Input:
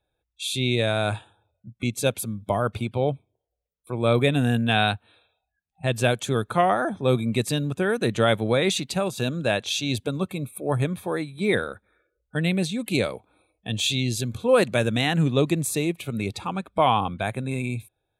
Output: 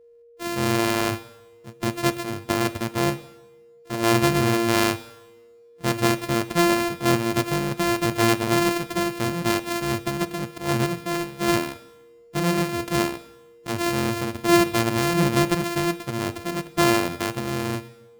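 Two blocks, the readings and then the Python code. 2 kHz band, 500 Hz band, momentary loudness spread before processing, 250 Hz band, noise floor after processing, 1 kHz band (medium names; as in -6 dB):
+1.5 dB, -1.0 dB, 9 LU, +3.0 dB, -51 dBFS, +1.5 dB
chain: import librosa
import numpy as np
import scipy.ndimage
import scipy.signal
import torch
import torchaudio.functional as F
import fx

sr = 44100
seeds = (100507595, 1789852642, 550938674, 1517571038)

y = np.r_[np.sort(x[:len(x) // 128 * 128].reshape(-1, 128), axis=1).ravel(), x[len(x) // 128 * 128:]]
y = y + 10.0 ** (-50.0 / 20.0) * np.sin(2.0 * np.pi * 470.0 * np.arange(len(y)) / sr)
y = fx.rev_double_slope(y, sr, seeds[0], early_s=1.0, late_s=2.8, knee_db=-27, drr_db=13.0)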